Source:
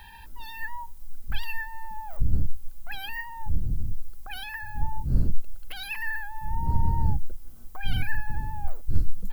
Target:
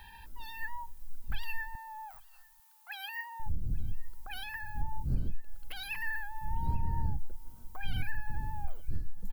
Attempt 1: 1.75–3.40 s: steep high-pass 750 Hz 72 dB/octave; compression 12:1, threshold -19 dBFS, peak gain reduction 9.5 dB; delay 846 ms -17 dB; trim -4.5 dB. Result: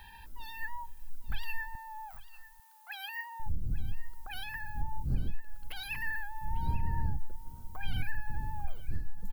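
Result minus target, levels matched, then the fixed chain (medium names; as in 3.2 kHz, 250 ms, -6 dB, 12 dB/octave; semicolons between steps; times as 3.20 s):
echo-to-direct +9.5 dB
1.75–3.40 s: steep high-pass 750 Hz 72 dB/octave; compression 12:1, threshold -19 dBFS, peak gain reduction 9.5 dB; delay 846 ms -26.5 dB; trim -4.5 dB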